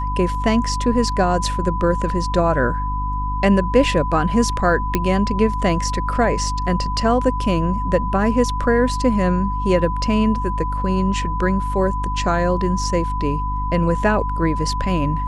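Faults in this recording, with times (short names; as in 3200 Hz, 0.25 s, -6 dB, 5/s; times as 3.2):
hum 50 Hz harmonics 6 -24 dBFS
tone 1000 Hz -24 dBFS
4.95 pop -4 dBFS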